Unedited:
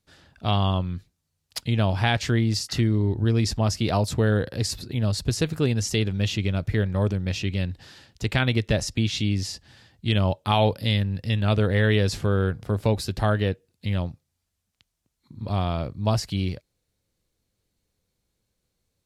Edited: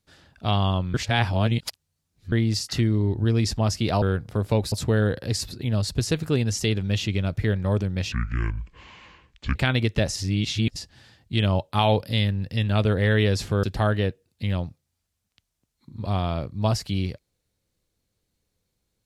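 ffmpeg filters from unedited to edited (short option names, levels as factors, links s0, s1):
-filter_complex "[0:a]asplit=10[s0][s1][s2][s3][s4][s5][s6][s7][s8][s9];[s0]atrim=end=0.942[s10];[s1]atrim=start=0.938:end=2.322,asetpts=PTS-STARTPTS,areverse[s11];[s2]atrim=start=2.318:end=4.022[s12];[s3]atrim=start=12.358:end=13.062[s13];[s4]atrim=start=4.018:end=7.424[s14];[s5]atrim=start=7.42:end=8.28,asetpts=PTS-STARTPTS,asetrate=26460,aresample=44100[s15];[s6]atrim=start=8.276:end=8.892[s16];[s7]atrim=start=8.888:end=9.492,asetpts=PTS-STARTPTS,areverse[s17];[s8]atrim=start=9.488:end=12.362[s18];[s9]atrim=start=13.058[s19];[s10][s11]acrossfade=d=0.004:c1=hsin:c2=hsin[s20];[s20][s12]acrossfade=d=0.004:c1=hsin:c2=hsin[s21];[s21][s13]acrossfade=d=0.004:c1=hsin:c2=hsin[s22];[s22][s14]acrossfade=d=0.004:c1=hsin:c2=hsin[s23];[s23][s15]acrossfade=d=0.004:c1=hsin:c2=hsin[s24];[s24][s16]acrossfade=d=0.004:c1=hsin:c2=hsin[s25];[s25][s17]acrossfade=d=0.004:c1=hsin:c2=hsin[s26];[s26][s18]acrossfade=d=0.004:c1=hsin:c2=hsin[s27];[s27][s19]acrossfade=d=0.004:c1=hsin:c2=hsin"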